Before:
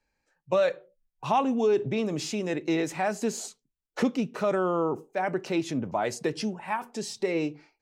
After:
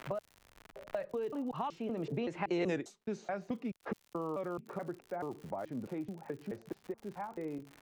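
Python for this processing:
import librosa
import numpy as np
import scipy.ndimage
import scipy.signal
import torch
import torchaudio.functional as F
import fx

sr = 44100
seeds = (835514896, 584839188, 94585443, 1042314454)

y = fx.block_reorder(x, sr, ms=202.0, group=3)
y = fx.doppler_pass(y, sr, speed_mps=22, closest_m=1.2, pass_at_s=2.69)
y = fx.env_lowpass(y, sr, base_hz=1100.0, full_db=-37.0)
y = fx.dmg_crackle(y, sr, seeds[0], per_s=100.0, level_db=-66.0)
y = fx.band_squash(y, sr, depth_pct=100)
y = y * librosa.db_to_amplitude(13.5)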